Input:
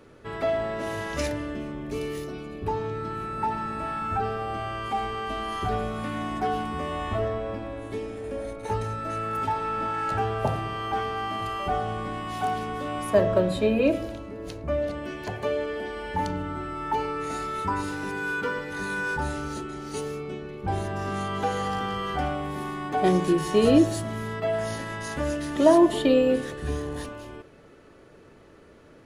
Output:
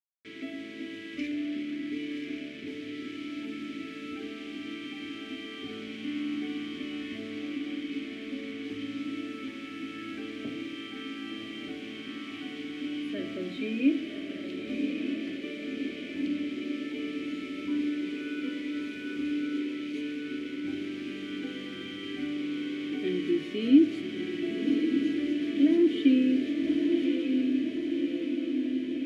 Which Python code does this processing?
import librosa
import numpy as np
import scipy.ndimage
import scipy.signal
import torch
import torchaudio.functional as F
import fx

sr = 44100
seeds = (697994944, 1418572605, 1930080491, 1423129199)

p1 = fx.quant_dither(x, sr, seeds[0], bits=6, dither='none')
p2 = fx.tilt_eq(p1, sr, slope=1.5)
p3 = p2 + fx.echo_diffused(p2, sr, ms=1146, feedback_pct=69, wet_db=-4.5, dry=0)
p4 = 10.0 ** (-11.5 / 20.0) * np.tanh(p3 / 10.0 ** (-11.5 / 20.0))
p5 = fx.vowel_filter(p4, sr, vowel='i')
p6 = fx.high_shelf(p5, sr, hz=7000.0, db=-11.5)
p7 = fx.small_body(p6, sr, hz=(330.0, 2600.0), ring_ms=25, db=7)
y = p7 * librosa.db_to_amplitude(4.5)